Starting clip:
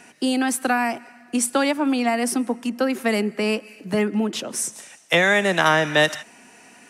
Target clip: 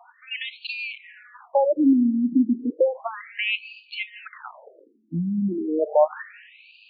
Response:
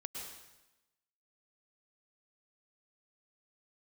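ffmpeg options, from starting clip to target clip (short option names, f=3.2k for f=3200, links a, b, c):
-filter_complex "[0:a]volume=9dB,asoftclip=hard,volume=-9dB,asplit=2[a][b];[1:a]atrim=start_sample=2205,lowshelf=f=440:g=6[c];[b][c]afir=irnorm=-1:irlink=0,volume=-18.5dB[d];[a][d]amix=inputs=2:normalize=0,afftfilt=real='re*between(b*sr/1024,220*pow(3400/220,0.5+0.5*sin(2*PI*0.33*pts/sr))/1.41,220*pow(3400/220,0.5+0.5*sin(2*PI*0.33*pts/sr))*1.41)':imag='im*between(b*sr/1024,220*pow(3400/220,0.5+0.5*sin(2*PI*0.33*pts/sr))/1.41,220*pow(3400/220,0.5+0.5*sin(2*PI*0.33*pts/sr))*1.41)':win_size=1024:overlap=0.75,volume=4dB"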